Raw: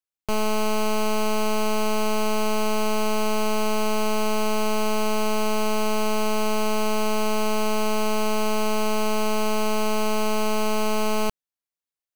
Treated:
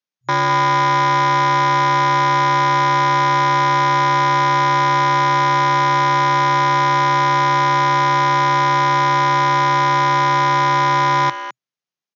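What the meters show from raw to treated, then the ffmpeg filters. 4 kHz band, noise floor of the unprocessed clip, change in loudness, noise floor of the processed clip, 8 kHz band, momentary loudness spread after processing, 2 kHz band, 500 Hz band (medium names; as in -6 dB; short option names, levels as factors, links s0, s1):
+6.5 dB, under -85 dBFS, +10.0 dB, under -85 dBFS, -1.5 dB, 0 LU, +12.5 dB, -0.5 dB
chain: -filter_complex "[0:a]aeval=exprs='val(0)*sin(2*PI*1000*n/s)':c=same,acrossover=split=190|1800|2900[s0][s1][s2][s3];[s0]acontrast=62[s4];[s4][s1][s2][s3]amix=inputs=4:normalize=0,asplit=2[s5][s6];[s6]adelay=210,highpass=300,lowpass=3400,asoftclip=type=hard:threshold=0.0531,volume=0.398[s7];[s5][s7]amix=inputs=2:normalize=0,afftfilt=real='re*between(b*sr/4096,120,6800)':imag='im*between(b*sr/4096,120,6800)':win_size=4096:overlap=0.75,volume=2.37"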